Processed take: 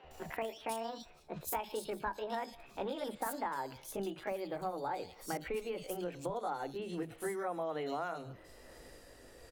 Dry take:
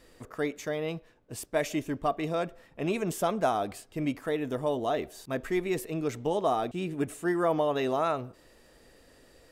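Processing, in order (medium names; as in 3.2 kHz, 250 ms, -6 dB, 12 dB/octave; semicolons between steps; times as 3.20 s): pitch bend over the whole clip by +7.5 st ending unshifted; compression 6:1, threshold -40 dBFS, peak gain reduction 17 dB; three bands offset in time mids, lows, highs 40/110 ms, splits 220/3200 Hz; trim +4.5 dB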